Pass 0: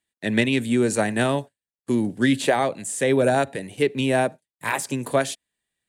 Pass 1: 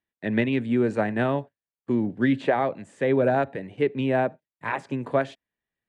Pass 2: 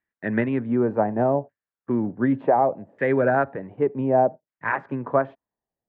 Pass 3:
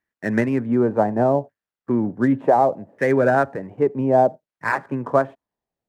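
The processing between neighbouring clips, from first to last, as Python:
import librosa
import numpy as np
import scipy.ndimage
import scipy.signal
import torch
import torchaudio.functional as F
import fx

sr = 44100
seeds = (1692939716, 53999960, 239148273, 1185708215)

y1 = scipy.signal.sosfilt(scipy.signal.butter(2, 2000.0, 'lowpass', fs=sr, output='sos'), x)
y1 = y1 * librosa.db_to_amplitude(-2.0)
y2 = fx.filter_lfo_lowpass(y1, sr, shape='saw_down', hz=0.67, low_hz=650.0, high_hz=1900.0, q=2.1)
y3 = scipy.signal.medfilt(y2, 9)
y3 = y3 * librosa.db_to_amplitude(3.0)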